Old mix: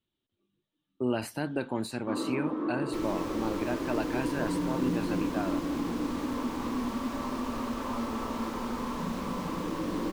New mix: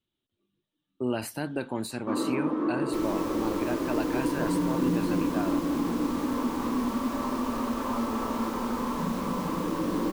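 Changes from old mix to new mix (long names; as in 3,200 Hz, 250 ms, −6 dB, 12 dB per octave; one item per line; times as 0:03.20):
first sound +4.0 dB
master: add high-shelf EQ 8,600 Hz +8.5 dB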